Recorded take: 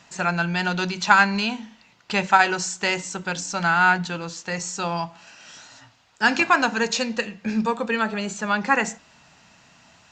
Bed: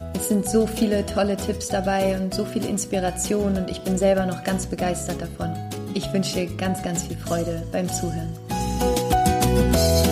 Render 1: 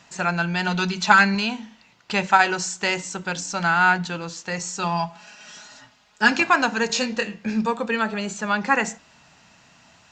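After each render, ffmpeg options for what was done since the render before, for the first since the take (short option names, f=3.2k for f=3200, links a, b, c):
-filter_complex "[0:a]asettb=1/sr,asplit=3[a][b][c];[a]atrim=end=0.674[d];[b]atrim=start=0.67:end=1.35,asetpts=PTS-STARTPTS,afade=t=in:d=0.004:c=qsin,afade=t=out:st=0.676:d=0.004:c=qsin,aecho=1:1:4.6:0.58,atrim=end_sample=29988[e];[c]atrim=start=1.346[f];[d][e]acrossfade=d=0.004:c1=hsin:c2=qsin[g];[g][f]acrossfade=d=0.004:c1=qsin:c2=hsin,asettb=1/sr,asplit=3[h][i][j];[h]atrim=end=4.824[k];[i]atrim=start=4.82:end=6.32,asetpts=PTS-STARTPTS,afade=t=in:d=0.004:c=qsin,afade=t=out:st=1.496:d=0.004:c=qsin,aecho=1:1:4.8:0.65,atrim=end_sample=66150[l];[j]atrim=start=6.316[m];[k][l]acrossfade=d=0.004:c1=hsin:c2=qsin[n];[n][m]acrossfade=d=0.004:c1=qsin:c2=hsin,asettb=1/sr,asplit=3[o][p][q];[o]atrim=end=6.874[r];[p]atrim=start=6.87:end=7.47,asetpts=PTS-STARTPTS,afade=t=in:d=0.004:c=qsin,afade=t=out:st=0.596:d=0.004:c=qsin,asplit=2[s][t];[t]adelay=24,volume=-6dB[u];[s][u]amix=inputs=2:normalize=0,atrim=end_sample=26460[v];[q]atrim=start=7.466[w];[r][v]acrossfade=d=0.004:c1=hsin:c2=qsin[x];[x][w]acrossfade=d=0.004:c1=qsin:c2=hsin"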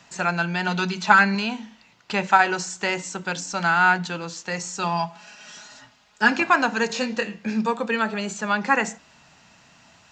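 -filter_complex "[0:a]acrossover=split=130|2400[a][b][c];[a]acompressor=threshold=-54dB:ratio=6[d];[c]alimiter=limit=-22.5dB:level=0:latency=1:release=144[e];[d][b][e]amix=inputs=3:normalize=0"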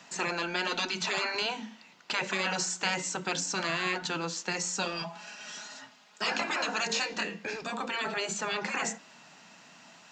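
-af "highpass=f=170:w=0.5412,highpass=f=170:w=1.3066,afftfilt=real='re*lt(hypot(re,im),0.2)':imag='im*lt(hypot(re,im),0.2)':win_size=1024:overlap=0.75"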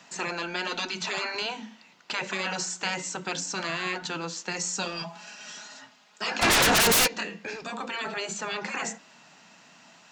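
-filter_complex "[0:a]asettb=1/sr,asplit=3[a][b][c];[a]atrim=end=4.564[d];[b]atrim=start=4.56:end=5.53,asetpts=PTS-STARTPTS,afade=t=in:d=0.004:c=qsin,afade=t=out:st=0.966:d=0.004:c=qsin,bass=f=250:g=2,treble=f=4k:g=3[e];[c]atrim=start=5.526[f];[d][e]acrossfade=d=0.004:c1=hsin:c2=qsin[g];[g][f]acrossfade=d=0.004:c1=qsin:c2=hsin,asplit=3[h][i][j];[h]afade=t=out:st=6.41:d=0.02[k];[i]aeval=exprs='0.141*sin(PI/2*6.31*val(0)/0.141)':c=same,afade=t=in:st=6.41:d=0.02,afade=t=out:st=7.06:d=0.02[l];[j]afade=t=in:st=7.06:d=0.02[m];[k][l][m]amix=inputs=3:normalize=0"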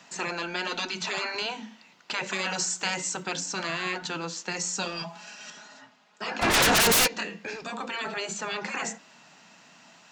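-filter_complex "[0:a]asettb=1/sr,asplit=3[a][b][c];[a]atrim=end=2.264[d];[b]atrim=start=2.26:end=3.23,asetpts=PTS-STARTPTS,afade=t=in:d=0.004:c=qsin,afade=t=out:st=0.966:d=0.004:c=qsin,highshelf=f=8.7k:g=11[e];[c]atrim=start=3.226[f];[d][e]acrossfade=d=0.004:c1=hsin:c2=qsin[g];[g][f]acrossfade=d=0.004:c1=qsin:c2=hsin,asettb=1/sr,asplit=3[h][i][j];[h]atrim=end=5.504[k];[i]atrim=start=5.5:end=6.54,asetpts=PTS-STARTPTS,afade=t=in:d=0.004:c=qsin,afade=t=out:st=1.036:d=0.004:c=qsin,highshelf=f=2.7k:g=-9[l];[j]atrim=start=6.536[m];[k][l]acrossfade=d=0.004:c1=hsin:c2=qsin[n];[n][m]acrossfade=d=0.004:c1=qsin:c2=hsin"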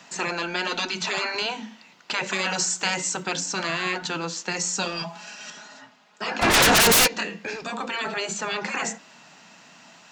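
-af "volume=4dB"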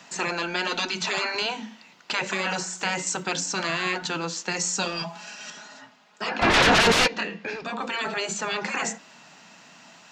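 -filter_complex "[0:a]asettb=1/sr,asplit=3[a][b][c];[a]atrim=end=2.234[d];[b]atrim=start=2.23:end=3.07,asetpts=PTS-STARTPTS,afade=t=in:d=0.004:c=qsin,afade=t=out:st=0.836:d=0.004:c=qsin,acrossover=split=2600[e][f];[f]acompressor=threshold=-31dB:ratio=4:attack=1:release=60[g];[e][g]amix=inputs=2:normalize=0[h];[c]atrim=start=3.066[i];[d][h]acrossfade=d=0.004:c1=hsin:c2=qsin[j];[j][i]acrossfade=d=0.004:c1=qsin:c2=hsin,asettb=1/sr,asplit=3[k][l][m];[k]atrim=end=6.294[n];[l]atrim=start=6.29:end=7.82,asetpts=PTS-STARTPTS,afade=t=in:d=0.004:c=qsin,afade=t=out:st=1.526:d=0.004:c=qsin,lowpass=4.3k[o];[m]atrim=start=7.816[p];[n][o]acrossfade=d=0.004:c1=hsin:c2=qsin[q];[q][p]acrossfade=d=0.004:c1=qsin:c2=hsin"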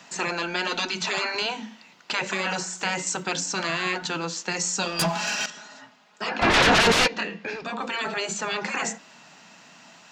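-filter_complex "[0:a]asettb=1/sr,asplit=3[a][b][c];[a]atrim=end=4.994[d];[b]atrim=start=4.99:end=5.46,asetpts=PTS-STARTPTS,afade=t=in:d=0.004:c=qsin,afade=t=out:st=0.466:d=0.004:c=qsin,aeval=exprs='0.112*sin(PI/2*3.16*val(0)/0.112)':c=same[e];[c]atrim=start=5.456[f];[d][e]acrossfade=d=0.004:c1=hsin:c2=qsin[g];[g][f]acrossfade=d=0.004:c1=qsin:c2=hsin"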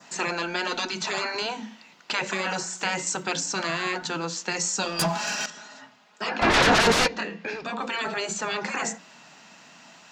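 -af "bandreject=f=60:t=h:w=6,bandreject=f=120:t=h:w=6,bandreject=f=180:t=h:w=6,adynamicequalizer=threshold=0.0141:dfrequency=2800:dqfactor=1.4:tfrequency=2800:tqfactor=1.4:attack=5:release=100:ratio=0.375:range=2.5:mode=cutabove:tftype=bell"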